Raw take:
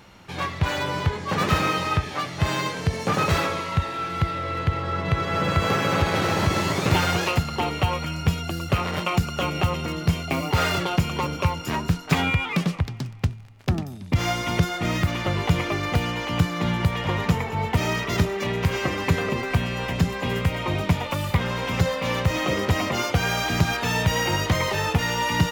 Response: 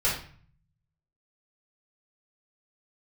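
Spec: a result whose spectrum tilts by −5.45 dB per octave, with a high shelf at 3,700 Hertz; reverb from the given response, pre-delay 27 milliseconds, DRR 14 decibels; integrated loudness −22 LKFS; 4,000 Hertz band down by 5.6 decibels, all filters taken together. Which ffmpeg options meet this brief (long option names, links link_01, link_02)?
-filter_complex "[0:a]highshelf=frequency=3700:gain=-4.5,equalizer=frequency=4000:width_type=o:gain=-5,asplit=2[link_01][link_02];[1:a]atrim=start_sample=2205,adelay=27[link_03];[link_02][link_03]afir=irnorm=-1:irlink=0,volume=-25.5dB[link_04];[link_01][link_04]amix=inputs=2:normalize=0,volume=3dB"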